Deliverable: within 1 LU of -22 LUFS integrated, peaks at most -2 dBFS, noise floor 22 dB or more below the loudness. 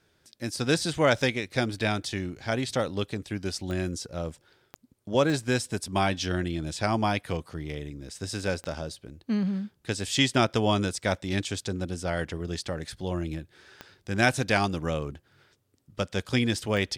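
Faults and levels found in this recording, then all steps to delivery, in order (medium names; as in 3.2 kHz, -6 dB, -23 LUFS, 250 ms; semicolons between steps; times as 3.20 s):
clicks found 6; loudness -28.5 LUFS; peak level -7.5 dBFS; loudness target -22.0 LUFS
-> de-click; trim +6.5 dB; peak limiter -2 dBFS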